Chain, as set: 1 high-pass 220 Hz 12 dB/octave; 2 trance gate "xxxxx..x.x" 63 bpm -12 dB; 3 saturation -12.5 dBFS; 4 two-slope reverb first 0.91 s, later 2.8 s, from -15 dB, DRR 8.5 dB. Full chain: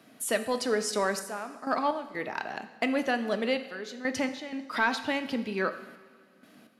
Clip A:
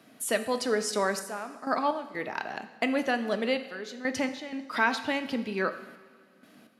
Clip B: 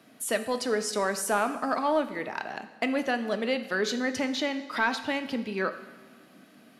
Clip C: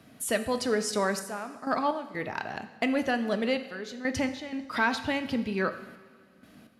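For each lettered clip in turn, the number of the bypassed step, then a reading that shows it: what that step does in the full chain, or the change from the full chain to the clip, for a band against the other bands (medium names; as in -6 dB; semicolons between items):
3, distortion -25 dB; 2, crest factor change -1.5 dB; 1, 125 Hz band +5.5 dB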